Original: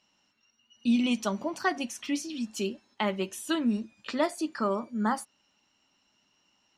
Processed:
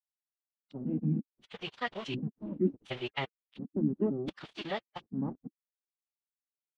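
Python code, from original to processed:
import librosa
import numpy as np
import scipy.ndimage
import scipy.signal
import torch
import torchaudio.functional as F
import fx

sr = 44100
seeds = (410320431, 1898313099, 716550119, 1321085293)

y = fx.block_reorder(x, sr, ms=171.0, group=4)
y = fx.highpass(y, sr, hz=46.0, slope=6)
y = fx.rider(y, sr, range_db=5, speed_s=2.0)
y = np.where(np.abs(y) >= 10.0 ** (-34.5 / 20.0), y, 0.0)
y = fx.filter_lfo_lowpass(y, sr, shape='square', hz=0.7, low_hz=310.0, high_hz=3300.0, q=3.5)
y = fx.pitch_keep_formants(y, sr, semitones=-7.5)
y = F.gain(torch.from_numpy(y), -8.5).numpy()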